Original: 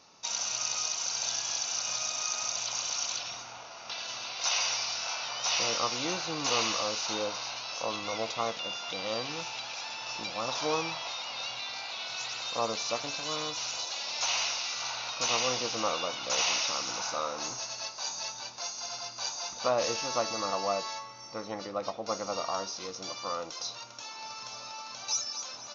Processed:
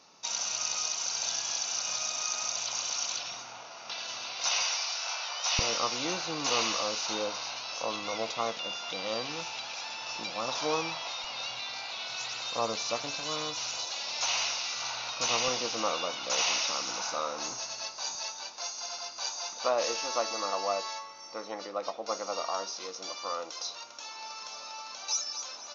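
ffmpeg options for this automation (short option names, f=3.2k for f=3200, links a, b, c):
-af "asetnsamples=n=441:p=0,asendcmd='4.62 highpass f 520;5.59 highpass f 130;11.24 highpass f 46;15.48 highpass f 150;18.15 highpass f 320',highpass=130"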